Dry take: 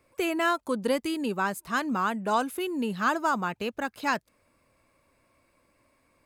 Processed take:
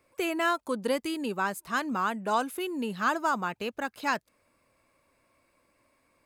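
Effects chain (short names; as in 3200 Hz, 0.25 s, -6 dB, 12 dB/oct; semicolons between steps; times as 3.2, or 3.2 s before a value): low shelf 210 Hz -5 dB; gain -1 dB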